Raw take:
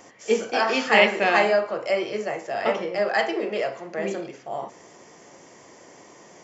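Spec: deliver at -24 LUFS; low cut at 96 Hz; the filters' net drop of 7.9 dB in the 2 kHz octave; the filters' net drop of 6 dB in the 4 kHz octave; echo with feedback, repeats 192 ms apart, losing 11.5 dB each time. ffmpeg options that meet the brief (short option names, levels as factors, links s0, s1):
-af "highpass=96,equalizer=f=2000:t=o:g=-8.5,equalizer=f=4000:t=o:g=-4.5,aecho=1:1:192|384|576:0.266|0.0718|0.0194,volume=1.19"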